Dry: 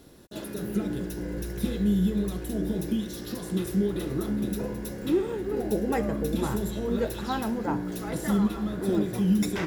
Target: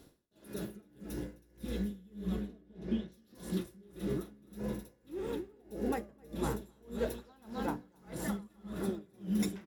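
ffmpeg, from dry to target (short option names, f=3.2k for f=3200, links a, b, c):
-filter_complex "[0:a]asettb=1/sr,asplit=3[a][b][c];[a]atrim=end=2.274[d];[b]atrim=start=2.27:end=3.12,asetpts=PTS-STARTPTS,afade=t=in:d=0.004:c=qsin,afade=t=out:st=0.846:d=0.004:c=qsin,lowpass=3.5k[e];[c]atrim=start=3.116[f];[d][e]acrossfade=d=0.004:c1=hsin:c2=qsin[g];[g][f]acrossfade=d=0.004:c1=qsin:c2=hsin,asplit=2[h][i];[i]aecho=0:1:260|520|780|1040:0.501|0.15|0.0451|0.0135[j];[h][j]amix=inputs=2:normalize=0,aeval=exprs='val(0)*pow(10,-29*(0.5-0.5*cos(2*PI*1.7*n/s))/20)':c=same,volume=-5dB"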